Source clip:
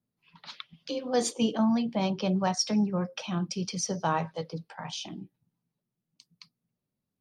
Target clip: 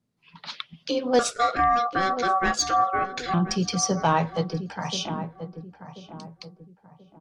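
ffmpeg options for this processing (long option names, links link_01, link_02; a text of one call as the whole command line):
ffmpeg -i in.wav -filter_complex "[0:a]lowpass=8800,asoftclip=type=tanh:threshold=-17dB,asettb=1/sr,asplit=3[link_01][link_02][link_03];[link_01]atrim=end=1.194[link_04];[link_02]atrim=start=1.19:end=3.34,asetpts=PTS-STARTPTS,afade=type=in:duration=0.004:curve=qsin,afade=type=out:start_time=2.146:duration=0.004:curve=qsin,aeval=exprs='val(0)*sin(2*PI*950*n/s)':channel_layout=same[link_05];[link_03]atrim=start=3.336[link_06];[link_04][link_05]acrossfade=duration=0.004:curve1=hsin:curve2=qsin[link_07];[link_07][link_06]acrossfade=duration=0.004:curve1=qsin:curve2=hsin,asplit=2[link_08][link_09];[link_09]adelay=1034,lowpass=frequency=1000:poles=1,volume=-10dB,asplit=2[link_10][link_11];[link_11]adelay=1034,lowpass=frequency=1000:poles=1,volume=0.37,asplit=2[link_12][link_13];[link_13]adelay=1034,lowpass=frequency=1000:poles=1,volume=0.37,asplit=2[link_14][link_15];[link_15]adelay=1034,lowpass=frequency=1000:poles=1,volume=0.37[link_16];[link_08][link_10][link_12][link_14][link_16]amix=inputs=5:normalize=0,volume=7.5dB" out.wav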